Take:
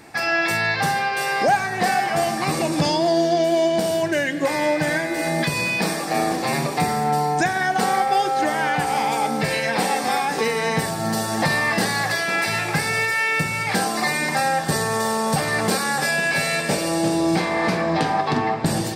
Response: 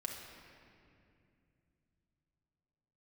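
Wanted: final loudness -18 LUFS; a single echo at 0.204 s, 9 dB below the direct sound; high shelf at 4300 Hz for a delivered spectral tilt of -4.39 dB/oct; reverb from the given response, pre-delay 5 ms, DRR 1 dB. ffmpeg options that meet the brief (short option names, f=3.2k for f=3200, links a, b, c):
-filter_complex "[0:a]highshelf=f=4.3k:g=-4,aecho=1:1:204:0.355,asplit=2[a][b];[1:a]atrim=start_sample=2205,adelay=5[c];[b][c]afir=irnorm=-1:irlink=0,volume=-1dB[d];[a][d]amix=inputs=2:normalize=0,volume=0.5dB"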